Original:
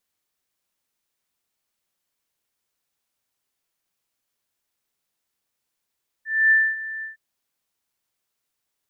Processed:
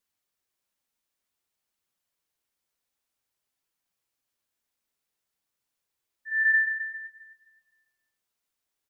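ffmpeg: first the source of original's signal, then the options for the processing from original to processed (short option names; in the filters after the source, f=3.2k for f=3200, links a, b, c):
-f lavfi -i "aevalsrc='0.251*sin(2*PI*1770*t)':d=0.913:s=44100,afade=t=in:d=0.259,afade=t=out:st=0.259:d=0.246:silence=0.15,afade=t=out:st=0.78:d=0.133"
-filter_complex "[0:a]flanger=delay=0.6:depth=3.8:regen=-65:speed=0.54:shape=triangular,asplit=2[a][b];[b]adelay=260,lowpass=f=1.7k:p=1,volume=-8.5dB,asplit=2[c][d];[d]adelay=260,lowpass=f=1.7k:p=1,volume=0.38,asplit=2[e][f];[f]adelay=260,lowpass=f=1.7k:p=1,volume=0.38,asplit=2[g][h];[h]adelay=260,lowpass=f=1.7k:p=1,volume=0.38[i];[a][c][e][g][i]amix=inputs=5:normalize=0"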